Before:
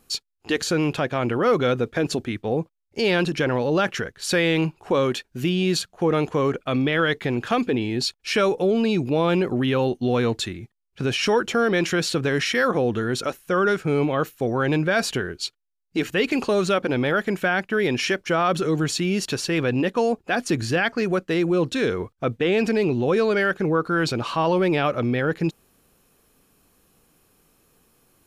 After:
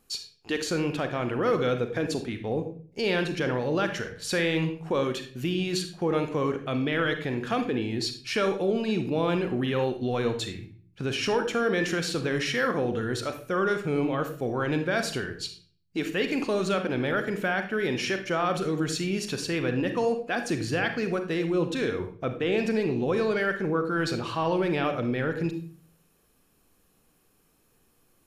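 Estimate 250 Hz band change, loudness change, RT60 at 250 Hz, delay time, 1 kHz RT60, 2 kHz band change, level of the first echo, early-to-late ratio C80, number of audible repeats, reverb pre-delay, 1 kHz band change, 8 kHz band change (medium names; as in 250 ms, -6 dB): -5.0 dB, -5.0 dB, 0.70 s, no echo, 0.40 s, -5.0 dB, no echo, 13.0 dB, no echo, 36 ms, -5.5 dB, -5.5 dB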